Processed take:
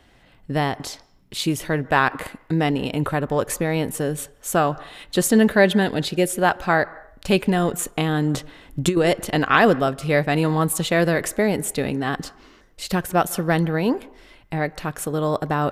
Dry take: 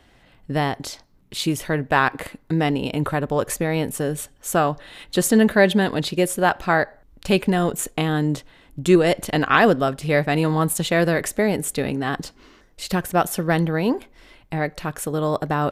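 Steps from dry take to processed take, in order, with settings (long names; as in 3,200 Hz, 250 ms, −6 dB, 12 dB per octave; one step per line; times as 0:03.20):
0:05.83–0:06.35: parametric band 1,100 Hz −11.5 dB 0.22 octaves
on a send at −21.5 dB: convolution reverb RT60 0.60 s, pre-delay 135 ms
0:08.34–0:08.97: on the sum: compressor whose output falls as the input rises −17 dBFS, ratio −0.5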